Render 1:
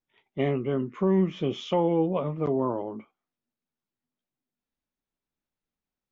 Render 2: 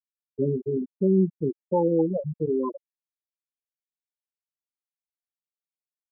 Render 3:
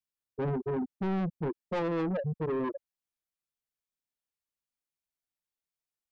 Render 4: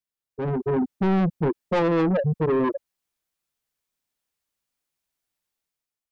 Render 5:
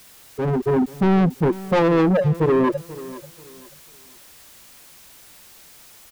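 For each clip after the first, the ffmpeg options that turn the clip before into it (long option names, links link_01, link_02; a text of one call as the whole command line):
ffmpeg -i in.wav -af "afftfilt=real='re*gte(hypot(re,im),0.251)':imag='im*gte(hypot(re,im),0.251)':win_size=1024:overlap=0.75,volume=2.5dB" out.wav
ffmpeg -i in.wav -af "lowshelf=frequency=130:gain=8,asoftclip=type=tanh:threshold=-28dB" out.wav
ffmpeg -i in.wav -af "dynaudnorm=framelen=100:gausssize=11:maxgain=9.5dB" out.wav
ffmpeg -i in.wav -af "aeval=exprs='val(0)+0.5*0.00708*sgn(val(0))':channel_layout=same,aecho=1:1:487|974|1461:0.133|0.0373|0.0105,volume=4dB" out.wav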